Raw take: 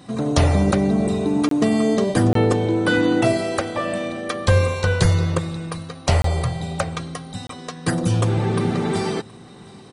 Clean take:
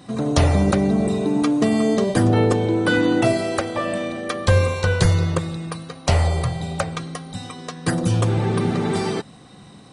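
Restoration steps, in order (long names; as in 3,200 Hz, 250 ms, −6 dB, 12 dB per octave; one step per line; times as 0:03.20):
repair the gap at 0:01.49/0:02.33/0:06.22/0:07.47, 23 ms
echo removal 723 ms −24 dB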